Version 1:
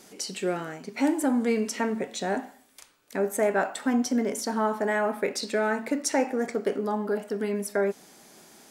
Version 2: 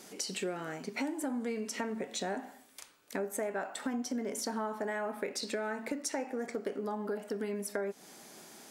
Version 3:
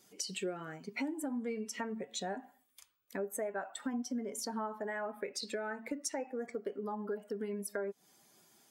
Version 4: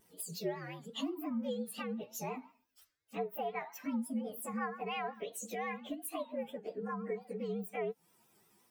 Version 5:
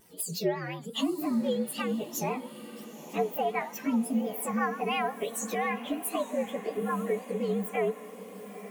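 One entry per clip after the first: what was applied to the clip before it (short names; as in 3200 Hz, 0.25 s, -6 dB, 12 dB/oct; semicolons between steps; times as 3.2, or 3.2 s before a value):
low shelf 76 Hz -8.5 dB; compressor, threshold -33 dBFS, peak gain reduction 13 dB
per-bin expansion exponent 1.5
inharmonic rescaling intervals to 118%; vibrato 5.7 Hz 93 cents; gain +2 dB
diffused feedback echo 0.919 s, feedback 60%, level -14.5 dB; gain +8.5 dB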